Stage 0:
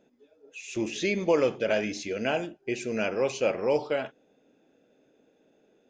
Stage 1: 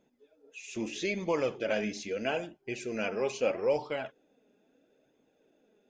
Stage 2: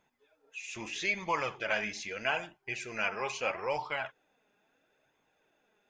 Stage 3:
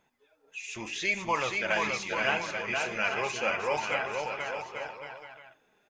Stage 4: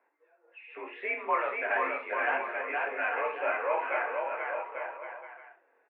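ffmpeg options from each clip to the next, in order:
ffmpeg -i in.wav -af "flanger=delay=0.9:depth=4:regen=44:speed=0.77:shape=sinusoidal" out.wav
ffmpeg -i in.wav -af "equalizer=frequency=250:width_type=o:width=1:gain=-11,equalizer=frequency=500:width_type=o:width=1:gain=-8,equalizer=frequency=1000:width_type=o:width=1:gain=8,equalizer=frequency=2000:width_type=o:width=1:gain=5" out.wav
ffmpeg -i in.wav -af "aecho=1:1:480|840|1110|1312|1464:0.631|0.398|0.251|0.158|0.1,volume=2.5dB" out.wav
ffmpeg -i in.wav -af "volume=21.5dB,asoftclip=hard,volume=-21.5dB,aecho=1:1:24|63:0.531|0.316,highpass=frequency=280:width_type=q:width=0.5412,highpass=frequency=280:width_type=q:width=1.307,lowpass=frequency=2100:width_type=q:width=0.5176,lowpass=frequency=2100:width_type=q:width=0.7071,lowpass=frequency=2100:width_type=q:width=1.932,afreqshift=57" out.wav

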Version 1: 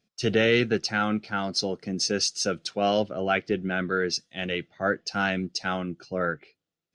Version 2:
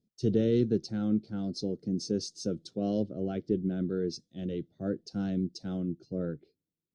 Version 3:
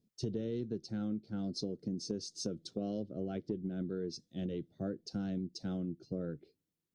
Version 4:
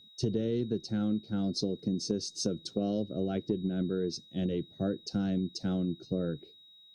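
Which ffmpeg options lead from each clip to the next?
ffmpeg -i in.wav -af "firequalizer=gain_entry='entry(320,0);entry(860,-23);entry(2500,-29);entry(3600,-14)':delay=0.05:min_phase=1" out.wav
ffmpeg -i in.wav -af "acompressor=threshold=-36dB:ratio=6,volume=1.5dB" out.wav
ffmpeg -i in.wav -af "aeval=exprs='val(0)+0.000891*sin(2*PI*3800*n/s)':channel_layout=same,volume=6.5dB" out.wav

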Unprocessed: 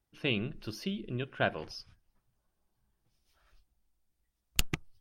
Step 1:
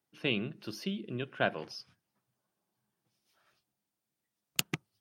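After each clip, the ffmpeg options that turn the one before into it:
ffmpeg -i in.wav -af "highpass=frequency=130:width=0.5412,highpass=frequency=130:width=1.3066" out.wav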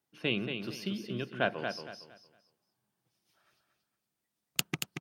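ffmpeg -i in.wav -af "aecho=1:1:230|460|690|920:0.473|0.137|0.0398|0.0115" out.wav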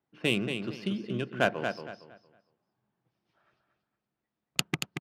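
ffmpeg -i in.wav -af "adynamicsmooth=sensitivity=6.5:basefreq=2400,aresample=32000,aresample=44100,volume=4dB" out.wav

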